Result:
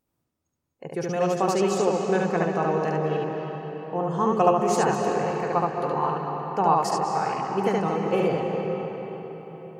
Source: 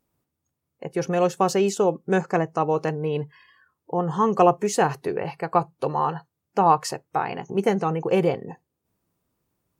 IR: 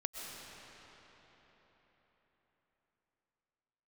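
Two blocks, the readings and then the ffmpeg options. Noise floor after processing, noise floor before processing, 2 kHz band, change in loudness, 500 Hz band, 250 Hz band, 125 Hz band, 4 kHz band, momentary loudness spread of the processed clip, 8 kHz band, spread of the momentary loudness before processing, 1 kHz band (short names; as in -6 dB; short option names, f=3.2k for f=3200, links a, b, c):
-79 dBFS, -81 dBFS, -0.5 dB, -1.0 dB, -0.5 dB, -0.5 dB, -1.0 dB, -1.0 dB, 12 LU, -1.5 dB, 10 LU, -0.5 dB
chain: -filter_complex "[0:a]asplit=2[a][b];[b]lowpass=f=8.9k:w=0.5412,lowpass=f=8.9k:w=1.3066[c];[1:a]atrim=start_sample=2205,adelay=72[d];[c][d]afir=irnorm=-1:irlink=0,volume=0.5dB[e];[a][e]amix=inputs=2:normalize=0,volume=-4.5dB"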